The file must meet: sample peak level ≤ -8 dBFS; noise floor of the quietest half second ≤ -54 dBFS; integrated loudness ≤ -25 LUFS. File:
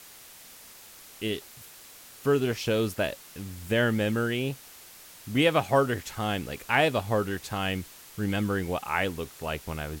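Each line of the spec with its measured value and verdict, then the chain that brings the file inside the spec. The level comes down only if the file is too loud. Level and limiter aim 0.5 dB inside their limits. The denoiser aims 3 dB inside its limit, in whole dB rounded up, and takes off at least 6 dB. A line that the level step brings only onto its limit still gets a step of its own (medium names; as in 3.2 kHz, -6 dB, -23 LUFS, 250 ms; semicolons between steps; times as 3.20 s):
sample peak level -9.0 dBFS: pass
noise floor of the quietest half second -49 dBFS: fail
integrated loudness -28.0 LUFS: pass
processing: noise reduction 8 dB, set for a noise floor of -49 dBFS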